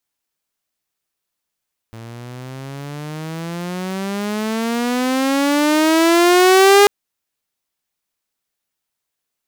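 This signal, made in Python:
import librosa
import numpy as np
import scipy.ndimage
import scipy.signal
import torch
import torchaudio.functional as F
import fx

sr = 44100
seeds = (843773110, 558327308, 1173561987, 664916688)

y = fx.riser_tone(sr, length_s=4.94, level_db=-4, wave='saw', hz=112.0, rise_st=22.5, swell_db=26.0)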